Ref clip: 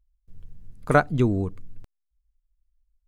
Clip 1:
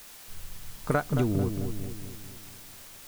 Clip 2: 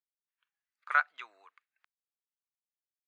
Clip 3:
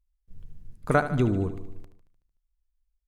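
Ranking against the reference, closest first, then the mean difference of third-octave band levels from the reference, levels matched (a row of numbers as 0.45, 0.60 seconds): 3, 2, 1; 4.5, 11.0, 15.5 decibels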